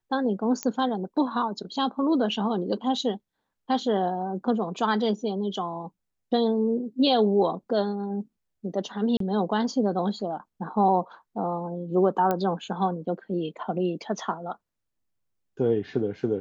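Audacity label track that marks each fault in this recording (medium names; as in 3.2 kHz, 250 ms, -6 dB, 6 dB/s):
0.630000	0.630000	pop -13 dBFS
9.170000	9.200000	dropout 33 ms
12.310000	12.310000	pop -13 dBFS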